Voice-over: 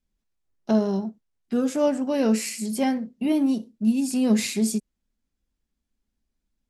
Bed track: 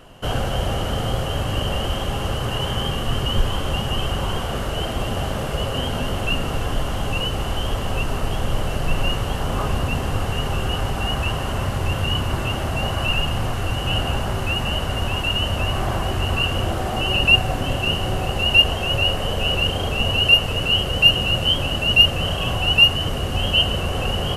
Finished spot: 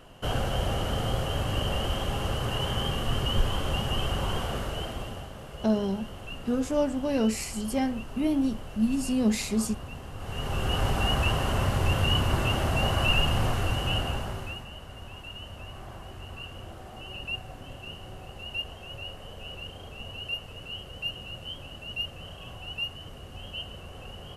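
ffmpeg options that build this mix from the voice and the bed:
-filter_complex "[0:a]adelay=4950,volume=-4dB[a];[1:a]volume=9.5dB,afade=t=out:st=4.44:d=0.85:silence=0.251189,afade=t=in:st=10.17:d=0.7:silence=0.177828,afade=t=out:st=13.47:d=1.2:silence=0.133352[b];[a][b]amix=inputs=2:normalize=0"

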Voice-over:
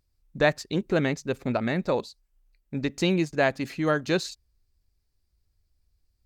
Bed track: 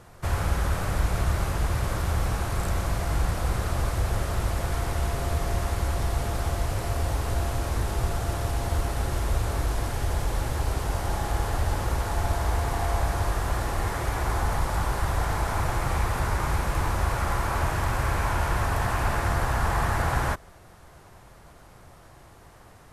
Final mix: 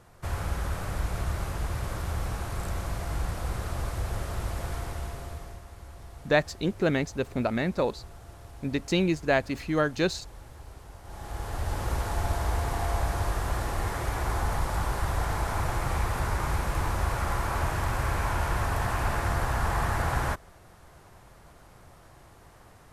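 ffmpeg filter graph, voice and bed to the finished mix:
-filter_complex "[0:a]adelay=5900,volume=-1dB[a];[1:a]volume=11dB,afade=t=out:st=4.69:d=0.93:silence=0.211349,afade=t=in:st=11.03:d=0.91:silence=0.149624[b];[a][b]amix=inputs=2:normalize=0"

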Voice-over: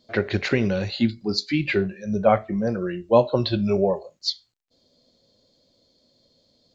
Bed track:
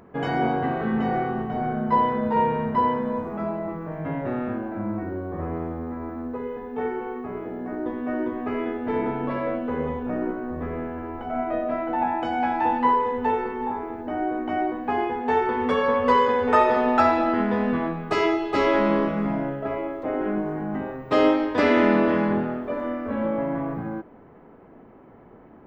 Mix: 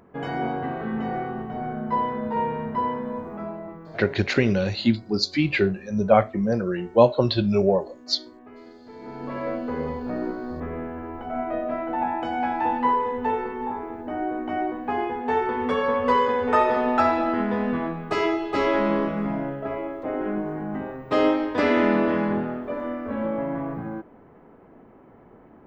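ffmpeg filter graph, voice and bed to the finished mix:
-filter_complex "[0:a]adelay=3850,volume=1dB[a];[1:a]volume=12.5dB,afade=t=out:st=3.34:d=0.89:silence=0.199526,afade=t=in:st=8.99:d=0.51:silence=0.149624[b];[a][b]amix=inputs=2:normalize=0"

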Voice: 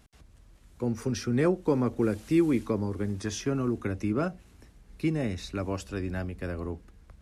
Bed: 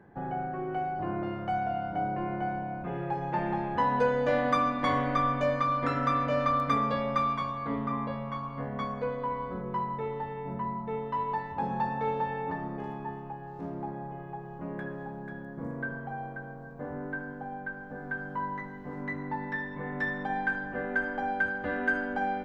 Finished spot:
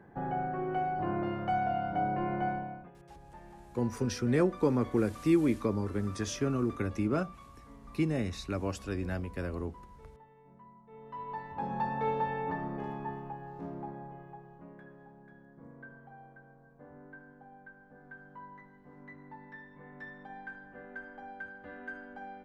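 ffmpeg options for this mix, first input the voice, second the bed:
-filter_complex "[0:a]adelay=2950,volume=-2dB[a];[1:a]volume=21dB,afade=t=out:st=2.48:d=0.43:silence=0.0794328,afade=t=in:st=10.88:d=1.18:silence=0.0891251,afade=t=out:st=13.16:d=1.61:silence=0.199526[b];[a][b]amix=inputs=2:normalize=0"

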